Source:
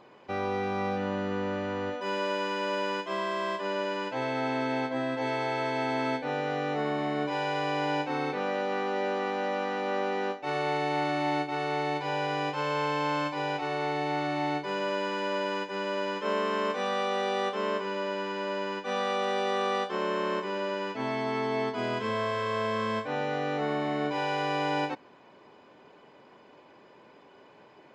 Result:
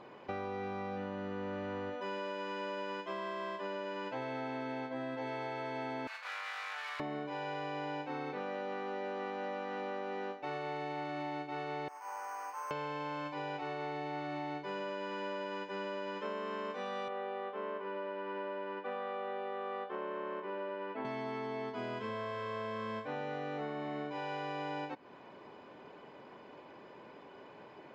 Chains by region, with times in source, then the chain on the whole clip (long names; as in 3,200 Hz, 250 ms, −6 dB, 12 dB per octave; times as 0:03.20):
0:06.07–0:07.00: lower of the sound and its delayed copy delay 0.42 ms + high-pass filter 1,000 Hz 24 dB per octave + high-shelf EQ 5,900 Hz +5 dB
0:11.88–0:12.71: linear delta modulator 16 kbit/s, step −36.5 dBFS + four-pole ladder band-pass 1,200 Hz, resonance 45% + bad sample-rate conversion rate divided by 6×, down none, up hold
0:17.08–0:21.05: running median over 9 samples + band-pass filter 280–4,700 Hz + high-frequency loss of the air 270 metres
whole clip: downward compressor, threshold −39 dBFS; low-pass filter 3,500 Hz 6 dB per octave; level +2 dB